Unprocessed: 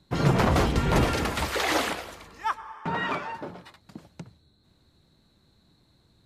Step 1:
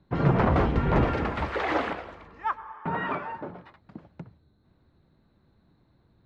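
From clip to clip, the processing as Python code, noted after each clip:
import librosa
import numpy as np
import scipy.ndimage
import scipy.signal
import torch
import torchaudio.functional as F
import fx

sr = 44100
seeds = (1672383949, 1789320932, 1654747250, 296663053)

y = scipy.signal.sosfilt(scipy.signal.butter(2, 1900.0, 'lowpass', fs=sr, output='sos'), x)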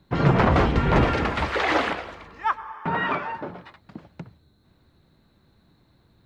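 y = fx.high_shelf(x, sr, hz=2400.0, db=10.0)
y = y * 10.0 ** (3.0 / 20.0)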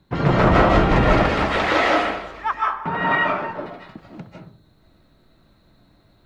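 y = fx.rev_freeverb(x, sr, rt60_s=0.41, hf_ratio=0.45, predelay_ms=115, drr_db=-3.5)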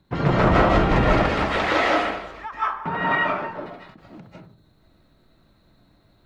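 y = fx.end_taper(x, sr, db_per_s=120.0)
y = y * 10.0 ** (-2.0 / 20.0)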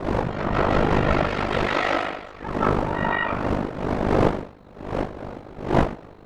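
y = fx.fade_in_head(x, sr, length_s=0.77)
y = fx.dmg_wind(y, sr, seeds[0], corner_hz=570.0, level_db=-23.0)
y = y * np.sin(2.0 * np.pi * 25.0 * np.arange(len(y)) / sr)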